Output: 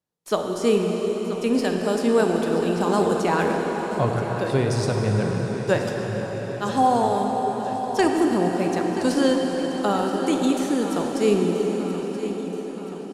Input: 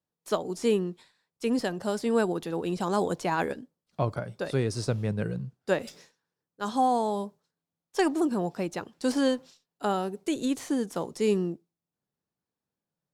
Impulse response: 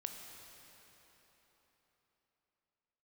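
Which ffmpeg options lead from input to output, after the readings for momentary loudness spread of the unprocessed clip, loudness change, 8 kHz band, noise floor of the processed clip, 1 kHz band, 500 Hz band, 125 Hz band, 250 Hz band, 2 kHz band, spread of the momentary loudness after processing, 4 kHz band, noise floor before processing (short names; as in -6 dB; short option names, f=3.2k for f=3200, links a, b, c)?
9 LU, +6.5 dB, +6.5 dB, -32 dBFS, +7.5 dB, +7.5 dB, +7.5 dB, +7.0 dB, +7.0 dB, 8 LU, +6.5 dB, under -85 dBFS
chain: -filter_complex "[0:a]asplit=2[a][b];[b]aeval=exprs='sgn(val(0))*max(abs(val(0))-0.00531,0)':c=same,volume=-9.5dB[c];[a][c]amix=inputs=2:normalize=0,aecho=1:1:978|1956|2934|3912|4890|5868:0.224|0.128|0.0727|0.0415|0.0236|0.0135[d];[1:a]atrim=start_sample=2205,asetrate=25578,aresample=44100[e];[d][e]afir=irnorm=-1:irlink=0,volume=3dB"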